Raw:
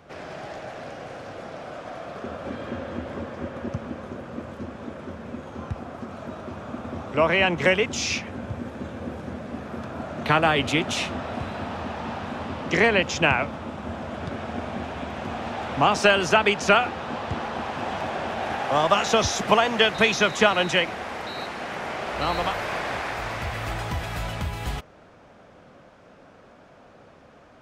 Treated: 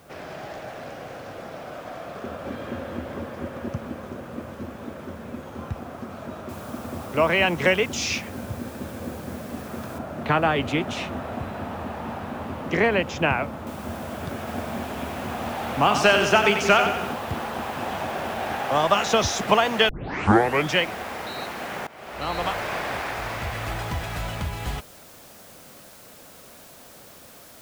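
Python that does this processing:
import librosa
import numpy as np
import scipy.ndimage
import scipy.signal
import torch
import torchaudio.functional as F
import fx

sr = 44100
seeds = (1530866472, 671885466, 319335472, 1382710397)

y = fx.noise_floor_step(x, sr, seeds[0], at_s=6.49, before_db=-61, after_db=-49, tilt_db=0.0)
y = fx.high_shelf(y, sr, hz=3100.0, db=-11.0, at=(9.98, 13.67))
y = fx.echo_split(y, sr, split_hz=430.0, low_ms=167, high_ms=91, feedback_pct=52, wet_db=-7, at=(14.38, 17.13))
y = fx.edit(y, sr, fx.tape_start(start_s=19.89, length_s=0.88),
    fx.fade_in_from(start_s=21.87, length_s=0.63, floor_db=-20.0), tone=tone)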